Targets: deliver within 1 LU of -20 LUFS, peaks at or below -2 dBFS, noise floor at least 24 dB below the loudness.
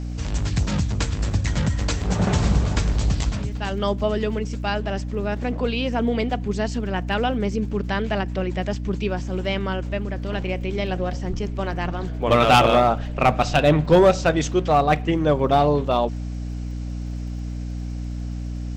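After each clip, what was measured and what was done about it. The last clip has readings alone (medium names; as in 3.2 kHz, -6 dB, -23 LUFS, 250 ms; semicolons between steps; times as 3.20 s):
tick rate 43 per s; hum 60 Hz; highest harmonic 300 Hz; hum level -26 dBFS; loudness -22.5 LUFS; peak level -5.0 dBFS; loudness target -20.0 LUFS
-> de-click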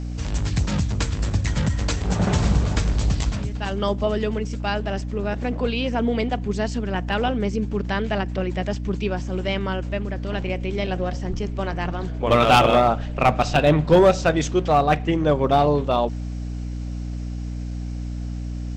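tick rate 0.43 per s; hum 60 Hz; highest harmonic 300 Hz; hum level -26 dBFS
-> hum notches 60/120/180/240/300 Hz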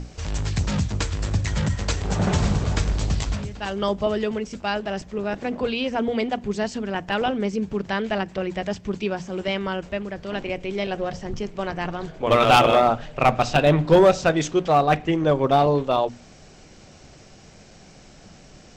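hum not found; loudness -23.0 LUFS; peak level -4.0 dBFS; loudness target -20.0 LUFS
-> trim +3 dB; peak limiter -2 dBFS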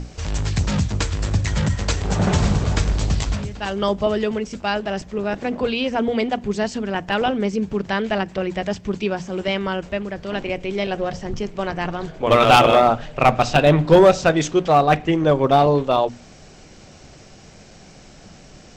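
loudness -20.0 LUFS; peak level -2.0 dBFS; noise floor -45 dBFS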